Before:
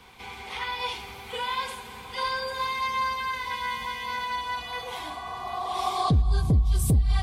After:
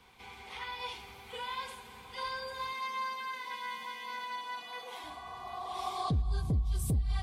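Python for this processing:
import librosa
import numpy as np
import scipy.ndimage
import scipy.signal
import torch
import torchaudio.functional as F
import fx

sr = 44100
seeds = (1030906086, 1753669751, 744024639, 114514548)

y = fx.highpass(x, sr, hz=200.0, slope=24, at=(2.73, 5.04))
y = F.gain(torch.from_numpy(y), -9.0).numpy()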